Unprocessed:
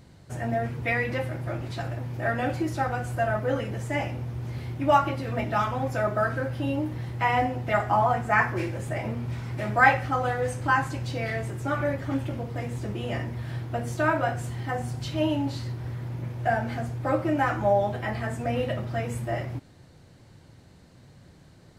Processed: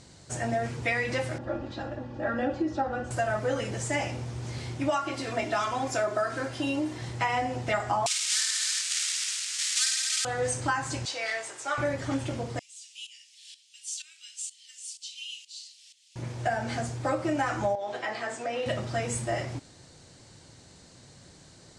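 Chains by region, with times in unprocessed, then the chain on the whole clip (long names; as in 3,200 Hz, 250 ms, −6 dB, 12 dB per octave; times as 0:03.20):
0:01.38–0:03.11: head-to-tape spacing loss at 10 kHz 34 dB + notch filter 2,200 Hz, Q 7 + comb filter 3.6 ms, depth 79%
0:04.90–0:07.02: high-pass filter 180 Hz 6 dB per octave + comb filter 2.9 ms, depth 42%
0:08.06–0:10.25: each half-wave held at its own peak + Bessel high-pass filter 2,800 Hz, order 6 + reverse bouncing-ball delay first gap 50 ms, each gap 1.1×, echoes 6, each echo −2 dB
0:11.05–0:11.78: high-pass filter 720 Hz + high-shelf EQ 8,500 Hz −5.5 dB
0:12.59–0:16.16: elliptic high-pass filter 2,800 Hz, stop band 80 dB + shaped tremolo saw up 2.1 Hz, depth 80%
0:17.75–0:18.66: high-pass filter 370 Hz + downward compressor 2.5 to 1, threshold −29 dBFS + high-frequency loss of the air 76 metres
whole clip: Butterworth low-pass 8,800 Hz 36 dB per octave; bass and treble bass −5 dB, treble +13 dB; downward compressor 12 to 1, threshold −25 dBFS; level +1.5 dB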